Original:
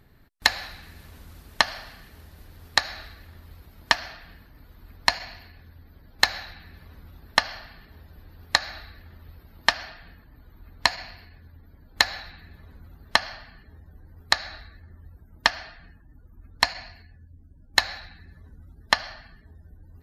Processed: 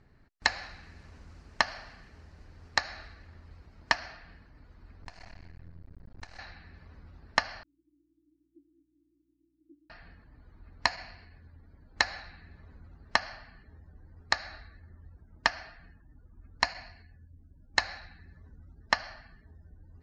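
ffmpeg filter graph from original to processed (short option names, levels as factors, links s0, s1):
-filter_complex "[0:a]asettb=1/sr,asplit=3[s0][s1][s2];[s0]atrim=end=5.024[s3];[s1]atrim=start=5.02:end=6.39,asetpts=PTS-STARTPTS,afade=t=in:d=0.004:c=qsin,afade=t=out:st=1.366:d=0.004:c=qsin,lowshelf=f=390:g=11,acompressor=threshold=0.0141:ratio=3:attack=3.2:release=140:knee=1:detection=peak,aeval=exprs='max(val(0),0)':c=same[s4];[s2]atrim=start=6.386[s5];[s3][s4]acrossfade=d=0.004:c1=hsin:c2=qsin[s6];[s6][s5]acrossfade=d=0.004:c1=qsin:c2=hsin,asettb=1/sr,asplit=3[s7][s8][s9];[s7]atrim=end=7.634[s10];[s8]atrim=start=7.63:end=9.9,asetpts=PTS-STARTPTS,afade=t=in:d=0.004:c=qsin,afade=t=out:st=2.266:d=0.004:c=qsin,asuperpass=centerf=310:order=12:qfactor=4.4,aeval=exprs='val(0)+0.000126*(sin(2*PI*60*n/s)+sin(2*PI*2*60*n/s)/2+sin(2*PI*3*60*n/s)/3+sin(2*PI*4*60*n/s)/4+sin(2*PI*5*60*n/s)/5)':c=same[s11];[s9]atrim=start=9.896[s12];[s10][s11]acrossfade=d=0.004:c1=hsin:c2=qsin[s13];[s13][s12]acrossfade=d=0.004:c1=qsin:c2=hsin,lowpass=f=6600:w=0.5412,lowpass=f=6600:w=1.3066,equalizer=f=3500:w=3.2:g=-9.5,volume=0.596"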